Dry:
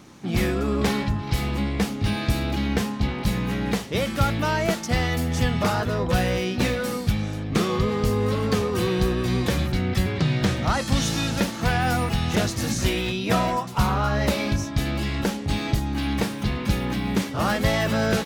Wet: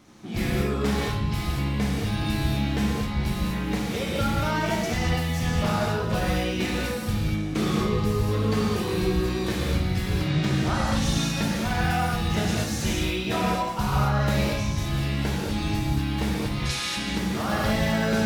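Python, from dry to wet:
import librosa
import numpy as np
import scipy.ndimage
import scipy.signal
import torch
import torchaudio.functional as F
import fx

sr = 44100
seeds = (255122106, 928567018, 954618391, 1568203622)

y = fx.weighting(x, sr, curve='ITU-R 468', at=(16.56, 16.97))
y = fx.rev_gated(y, sr, seeds[0], gate_ms=260, shape='flat', drr_db=-5.0)
y = y * librosa.db_to_amplitude(-8.0)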